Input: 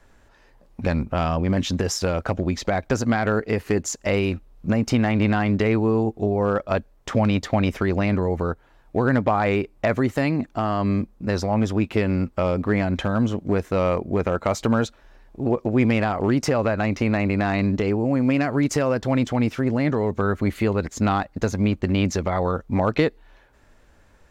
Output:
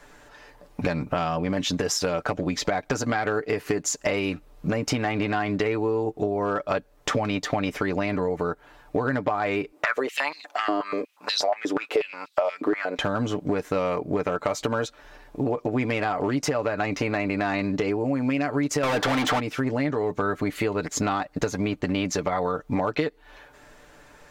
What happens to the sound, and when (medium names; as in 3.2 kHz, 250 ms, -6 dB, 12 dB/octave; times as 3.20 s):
9.72–12.99 s: step-sequenced high-pass 8.3 Hz 330–3800 Hz
18.83–19.40 s: overdrive pedal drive 36 dB, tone 2.5 kHz, clips at -9 dBFS
whole clip: bass shelf 170 Hz -11.5 dB; comb 6.8 ms, depth 53%; compression 5:1, threshold -31 dBFS; trim +8 dB